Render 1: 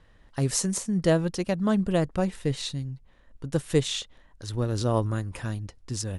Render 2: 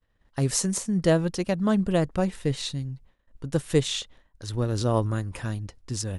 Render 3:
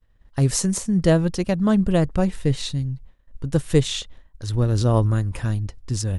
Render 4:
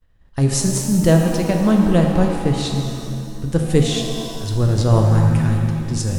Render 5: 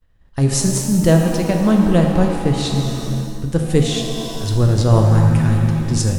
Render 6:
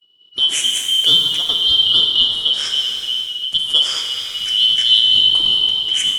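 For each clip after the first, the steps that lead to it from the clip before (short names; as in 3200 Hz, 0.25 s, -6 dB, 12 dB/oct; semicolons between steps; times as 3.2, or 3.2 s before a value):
expander -46 dBFS; gain +1 dB
low shelf 120 Hz +11 dB; gain +2 dB
shimmer reverb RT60 2.2 s, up +7 st, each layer -8 dB, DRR 2.5 dB; gain +1.5 dB
AGC gain up to 6.5 dB
four-band scrambler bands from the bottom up 2413; gain -1 dB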